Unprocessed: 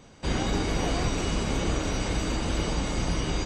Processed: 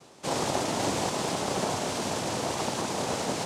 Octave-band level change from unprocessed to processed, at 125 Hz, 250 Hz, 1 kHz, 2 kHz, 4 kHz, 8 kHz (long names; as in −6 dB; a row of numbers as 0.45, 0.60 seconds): −8.0, −3.0, +4.0, −1.5, 0.0, +3.0 decibels